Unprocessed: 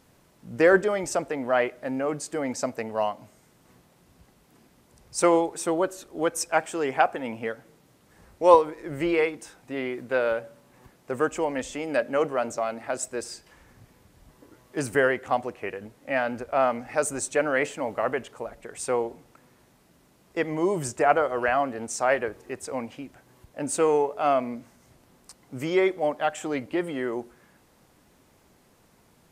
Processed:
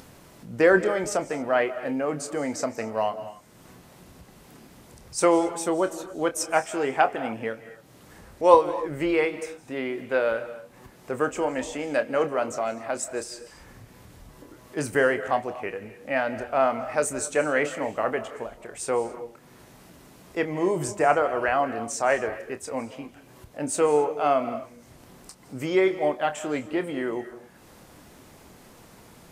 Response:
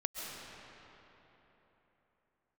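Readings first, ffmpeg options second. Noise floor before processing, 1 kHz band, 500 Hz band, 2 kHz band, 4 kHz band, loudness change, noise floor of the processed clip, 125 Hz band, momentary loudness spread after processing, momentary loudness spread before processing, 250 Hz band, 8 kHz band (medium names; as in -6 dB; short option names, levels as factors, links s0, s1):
-61 dBFS, +0.5 dB, +0.5 dB, +0.5 dB, +0.5 dB, +0.5 dB, -52 dBFS, +0.5 dB, 15 LU, 14 LU, +0.5 dB, +0.5 dB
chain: -filter_complex "[0:a]acompressor=mode=upward:threshold=0.01:ratio=2.5,asplit=2[s0][s1];[1:a]atrim=start_sample=2205,afade=t=out:st=0.31:d=0.01,atrim=end_sample=14112,adelay=27[s2];[s1][s2]afir=irnorm=-1:irlink=0,volume=0.335[s3];[s0][s3]amix=inputs=2:normalize=0"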